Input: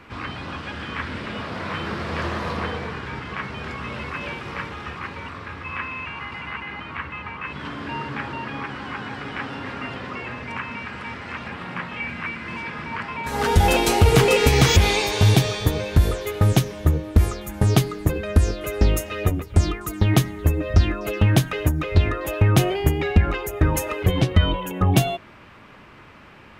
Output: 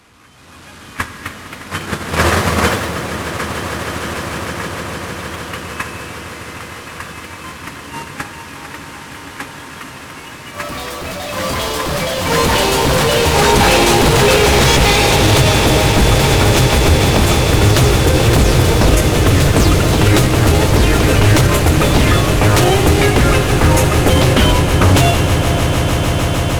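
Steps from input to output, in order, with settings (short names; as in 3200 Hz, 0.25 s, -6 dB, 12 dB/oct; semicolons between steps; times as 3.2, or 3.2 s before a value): delta modulation 64 kbps, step -26.5 dBFS; gate -24 dBFS, range -26 dB; AGC gain up to 11.5 dB; wavefolder -12 dBFS; swelling echo 0.153 s, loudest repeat 8, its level -15 dB; on a send at -9 dB: reverb RT60 2.6 s, pre-delay 17 ms; on the sum: echoes that change speed 0.367 s, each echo +2 st, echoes 3, each echo -6 dB; maximiser +9.5 dB; gain -1 dB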